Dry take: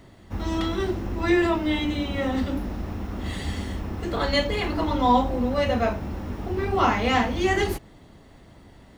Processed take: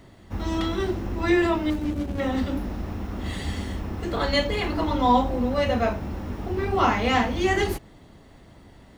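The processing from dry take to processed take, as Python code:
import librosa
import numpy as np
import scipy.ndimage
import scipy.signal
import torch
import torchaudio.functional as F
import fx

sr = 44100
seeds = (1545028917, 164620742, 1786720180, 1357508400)

y = fx.median_filter(x, sr, points=41, at=(1.7, 2.2))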